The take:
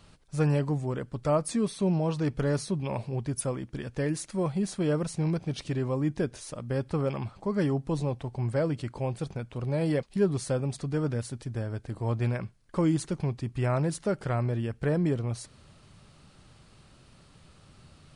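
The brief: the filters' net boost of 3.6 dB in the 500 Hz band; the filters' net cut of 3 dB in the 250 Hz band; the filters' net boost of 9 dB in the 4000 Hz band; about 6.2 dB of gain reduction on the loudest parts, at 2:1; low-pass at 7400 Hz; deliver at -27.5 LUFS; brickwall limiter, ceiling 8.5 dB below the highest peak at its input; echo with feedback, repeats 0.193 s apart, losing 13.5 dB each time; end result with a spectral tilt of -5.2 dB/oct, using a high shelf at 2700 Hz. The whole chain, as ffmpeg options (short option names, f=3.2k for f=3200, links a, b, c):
-af "lowpass=7.4k,equalizer=f=250:t=o:g=-7,equalizer=f=500:t=o:g=6,highshelf=f=2.7k:g=6,equalizer=f=4k:t=o:g=6.5,acompressor=threshold=-29dB:ratio=2,alimiter=level_in=1.5dB:limit=-24dB:level=0:latency=1,volume=-1.5dB,aecho=1:1:193|386:0.211|0.0444,volume=7.5dB"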